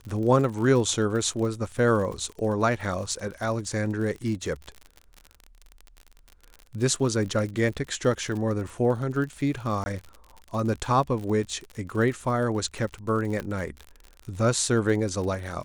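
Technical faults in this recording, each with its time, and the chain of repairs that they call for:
crackle 52 per s -33 dBFS
9.84–9.86 s: dropout 20 ms
13.40 s: pop -18 dBFS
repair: de-click; interpolate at 9.84 s, 20 ms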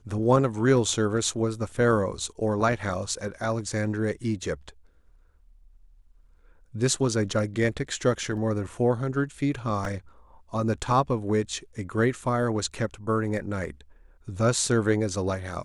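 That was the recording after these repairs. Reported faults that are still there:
nothing left

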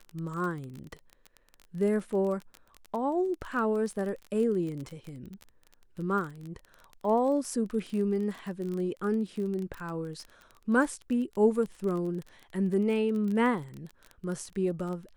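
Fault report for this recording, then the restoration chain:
crackle 24 per s -34 dBFS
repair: de-click

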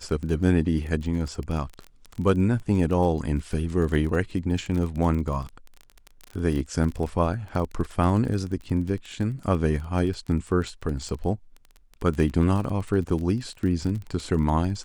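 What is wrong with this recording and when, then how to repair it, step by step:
crackle 22 per s -30 dBFS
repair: de-click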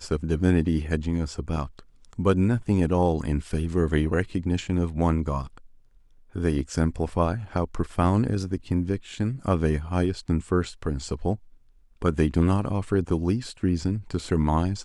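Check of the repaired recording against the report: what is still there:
nothing left

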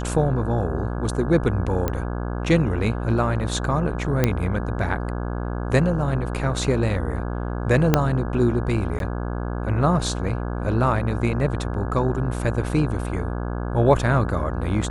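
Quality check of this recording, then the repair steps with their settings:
buzz 60 Hz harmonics 28 -27 dBFS
1.88 s: pop -10 dBFS
4.24 s: pop -5 dBFS
7.94 s: pop -2 dBFS
8.99–9.00 s: dropout 12 ms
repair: de-click; de-hum 60 Hz, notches 28; interpolate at 8.99 s, 12 ms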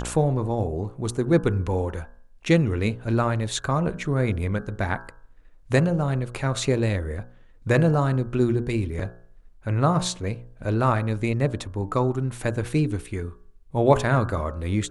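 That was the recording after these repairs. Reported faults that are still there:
7.94 s: pop

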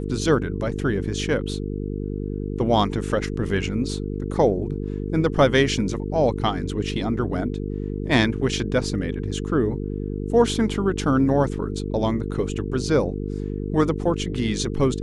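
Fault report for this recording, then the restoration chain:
buzz 50 Hz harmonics 9 -28 dBFS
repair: de-hum 50 Hz, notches 9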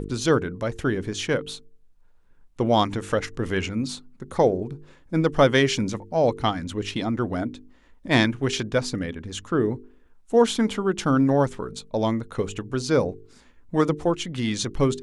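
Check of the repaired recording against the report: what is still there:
nothing left

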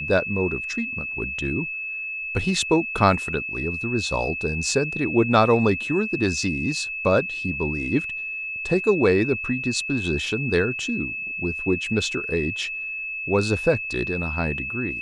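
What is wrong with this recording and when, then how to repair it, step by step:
whine 2.6 kHz -28 dBFS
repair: band-stop 2.6 kHz, Q 30

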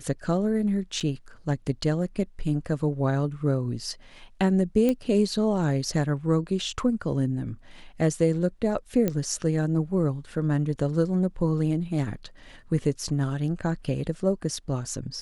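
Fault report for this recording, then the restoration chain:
1.00–1.01 s: dropout 6.6 ms
4.89 s: pop -13 dBFS
9.08 s: pop -12 dBFS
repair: de-click; interpolate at 1.00 s, 6.6 ms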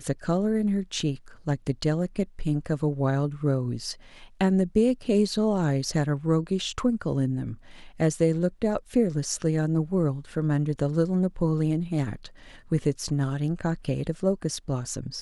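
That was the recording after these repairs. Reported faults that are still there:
4.89 s: pop

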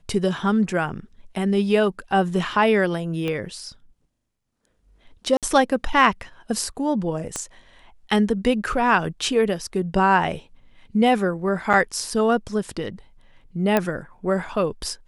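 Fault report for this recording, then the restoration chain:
3.28 s: pop -15 dBFS
5.37–5.43 s: dropout 57 ms
7.36 s: pop -13 dBFS
11.73–11.74 s: dropout 7.1 ms
13.77 s: pop -6 dBFS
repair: de-click; interpolate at 5.37 s, 57 ms; interpolate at 11.73 s, 7.1 ms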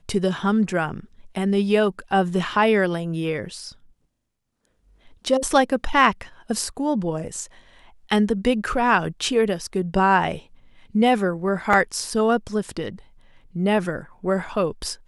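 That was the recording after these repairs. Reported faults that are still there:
3.28 s: pop
7.36 s: pop

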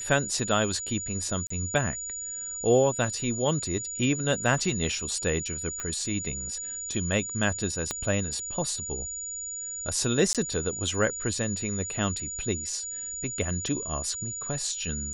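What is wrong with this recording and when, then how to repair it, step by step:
whine 6.9 kHz -33 dBFS
1.47–1.50 s: dropout 34 ms
5.80 s: pop -19 dBFS
7.91 s: pop -14 dBFS
10.33–10.35 s: dropout 17 ms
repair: de-click; band-stop 6.9 kHz, Q 30; interpolate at 1.47 s, 34 ms; interpolate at 10.33 s, 17 ms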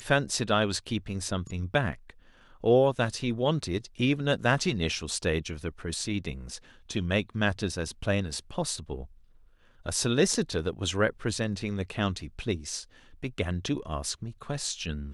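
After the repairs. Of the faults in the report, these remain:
7.91 s: pop

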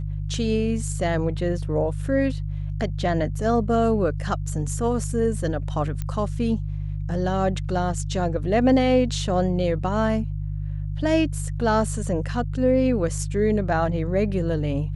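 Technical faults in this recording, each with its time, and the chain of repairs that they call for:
hum 50 Hz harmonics 3 -28 dBFS
6.02 s: pop -16 dBFS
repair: de-click; de-hum 50 Hz, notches 3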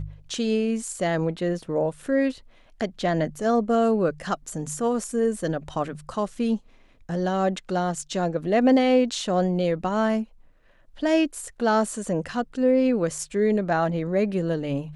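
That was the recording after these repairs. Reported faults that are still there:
nothing left

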